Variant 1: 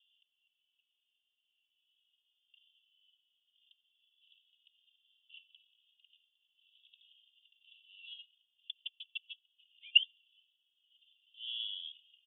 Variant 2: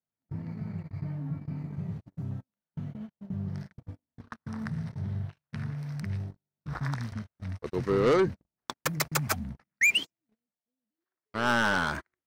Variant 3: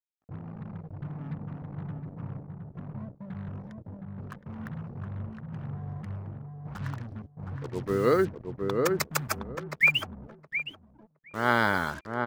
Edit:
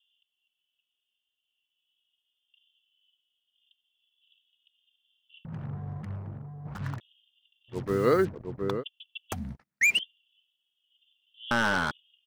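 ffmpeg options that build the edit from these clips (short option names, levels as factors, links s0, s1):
-filter_complex "[2:a]asplit=2[s0][s1];[1:a]asplit=2[s2][s3];[0:a]asplit=5[s4][s5][s6][s7][s8];[s4]atrim=end=5.452[s9];[s0]atrim=start=5.448:end=7.002[s10];[s5]atrim=start=6.998:end=7.78[s11];[s1]atrim=start=7.68:end=8.84[s12];[s6]atrim=start=8.74:end=9.322[s13];[s2]atrim=start=9.318:end=9.992[s14];[s7]atrim=start=9.988:end=11.512[s15];[s3]atrim=start=11.508:end=11.912[s16];[s8]atrim=start=11.908[s17];[s9][s10]acrossfade=d=0.004:c1=hsin:c2=hsin[s18];[s18][s11]acrossfade=d=0.004:c1=hsin:c2=hsin[s19];[s19][s12]acrossfade=d=0.1:c1=tri:c2=tri[s20];[s20][s13]acrossfade=d=0.1:c1=tri:c2=tri[s21];[s21][s14]acrossfade=d=0.004:c1=hsin:c2=hsin[s22];[s22][s15]acrossfade=d=0.004:c1=hsin:c2=hsin[s23];[s23][s16]acrossfade=d=0.004:c1=hsin:c2=hsin[s24];[s24][s17]acrossfade=d=0.004:c1=hsin:c2=hsin"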